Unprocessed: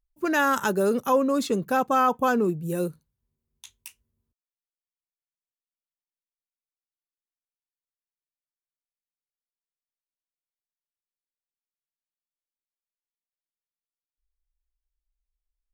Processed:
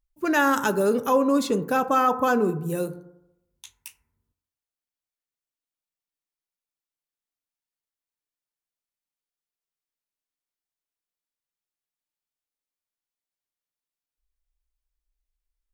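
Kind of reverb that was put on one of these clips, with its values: FDN reverb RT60 0.86 s, low-frequency decay 0.9×, high-frequency decay 0.3×, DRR 10 dB; gain +1 dB

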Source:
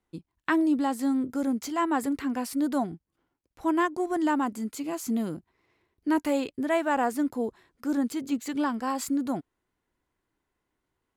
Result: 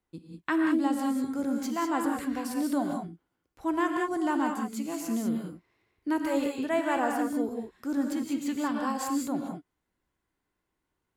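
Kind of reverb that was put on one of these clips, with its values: non-linear reverb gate 0.22 s rising, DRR 1.5 dB; gain -3.5 dB

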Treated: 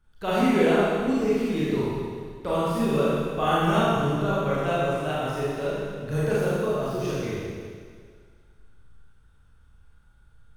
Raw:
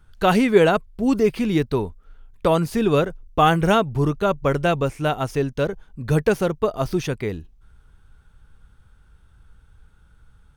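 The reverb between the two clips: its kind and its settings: Schroeder reverb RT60 1.9 s, combs from 27 ms, DRR -9 dB; gain -13.5 dB

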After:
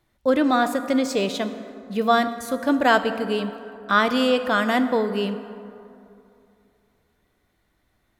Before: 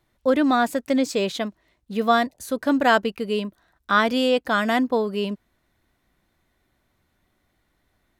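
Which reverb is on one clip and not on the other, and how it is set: plate-style reverb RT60 2.7 s, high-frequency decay 0.45×, DRR 9.5 dB

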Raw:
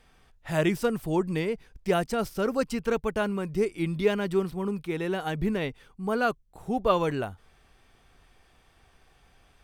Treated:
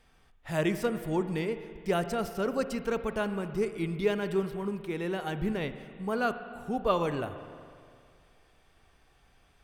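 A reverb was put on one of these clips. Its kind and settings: spring tank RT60 2.2 s, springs 41/58 ms, chirp 80 ms, DRR 10 dB; gain -3.5 dB

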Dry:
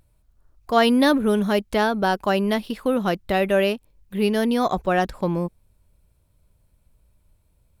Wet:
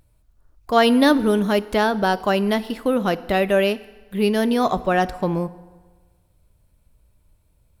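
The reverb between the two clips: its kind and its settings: FDN reverb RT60 1.4 s, low-frequency decay 0.95×, high-frequency decay 0.75×, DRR 15 dB; gain +1.5 dB

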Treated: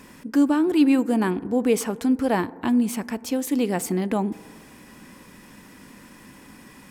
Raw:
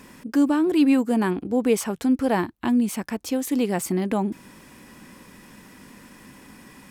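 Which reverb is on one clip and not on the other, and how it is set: FDN reverb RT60 1.8 s, high-frequency decay 0.25×, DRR 18 dB

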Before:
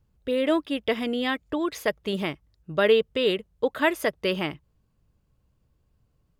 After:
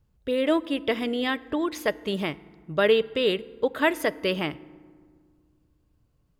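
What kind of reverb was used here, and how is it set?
FDN reverb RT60 1.8 s, low-frequency decay 1.45×, high-frequency decay 0.5×, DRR 18.5 dB

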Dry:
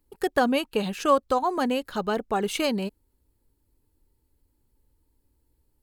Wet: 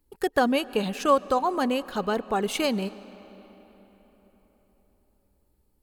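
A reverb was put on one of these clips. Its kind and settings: digital reverb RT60 4.5 s, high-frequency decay 0.65×, pre-delay 0.1 s, DRR 18 dB

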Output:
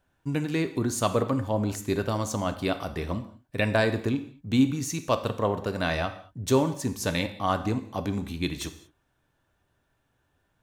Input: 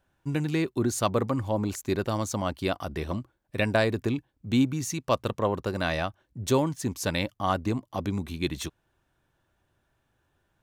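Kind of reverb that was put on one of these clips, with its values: non-linear reverb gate 0.25 s falling, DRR 8.5 dB

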